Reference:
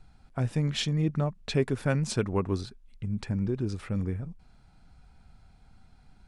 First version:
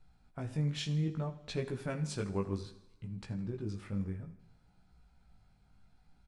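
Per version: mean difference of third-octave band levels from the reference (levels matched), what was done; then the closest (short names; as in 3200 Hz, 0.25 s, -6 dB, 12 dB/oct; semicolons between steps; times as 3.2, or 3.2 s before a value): 3.0 dB: two-slope reverb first 0.75 s, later 2.4 s, DRR 12 dB; chorus 0.62 Hz, delay 16.5 ms, depth 4.1 ms; feedback echo 81 ms, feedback 53%, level -18.5 dB; gain -6 dB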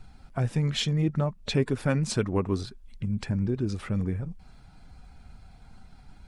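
1.5 dB: bin magnitudes rounded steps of 15 dB; in parallel at +1 dB: compressor, threshold -39 dBFS, peak gain reduction 17.5 dB; on the sum: short-mantissa float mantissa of 8-bit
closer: second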